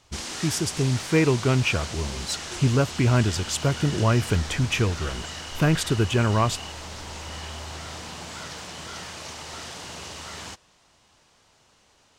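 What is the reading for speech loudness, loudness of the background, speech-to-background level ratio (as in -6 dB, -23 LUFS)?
-24.0 LUFS, -34.5 LUFS, 10.5 dB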